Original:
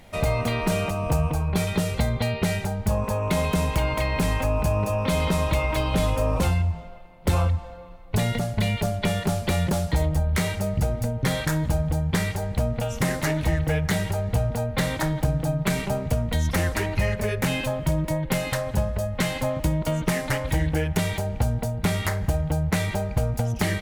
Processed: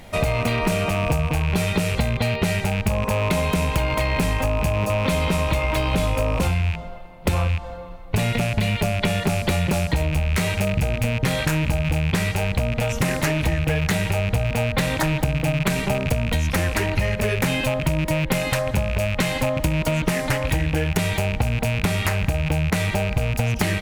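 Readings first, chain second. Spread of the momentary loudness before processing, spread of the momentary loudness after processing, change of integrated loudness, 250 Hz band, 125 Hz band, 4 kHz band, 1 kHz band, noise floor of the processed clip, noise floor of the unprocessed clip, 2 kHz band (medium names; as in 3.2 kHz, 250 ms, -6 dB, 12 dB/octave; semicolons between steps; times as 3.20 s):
3 LU, 1 LU, +3.0 dB, +2.5 dB, +2.5 dB, +4.5 dB, +2.5 dB, -31 dBFS, -37 dBFS, +5.5 dB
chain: rattle on loud lows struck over -29 dBFS, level -21 dBFS; compression, threshold -24 dBFS, peak gain reduction 8 dB; trim +6.5 dB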